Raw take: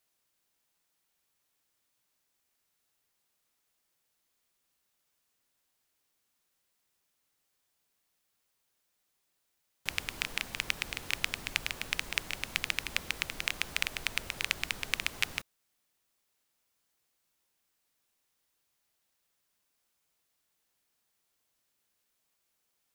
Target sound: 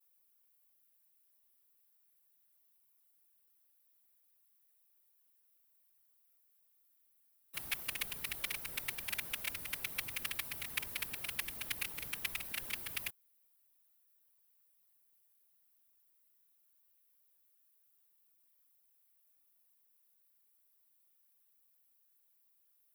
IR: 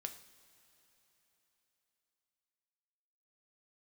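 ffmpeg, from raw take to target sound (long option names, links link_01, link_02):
-af "areverse,aexciter=amount=5.3:drive=5.4:freq=9600,afftfilt=real='hypot(re,im)*cos(2*PI*random(0))':imag='hypot(re,im)*sin(2*PI*random(1))':win_size=512:overlap=0.75,volume=-2dB"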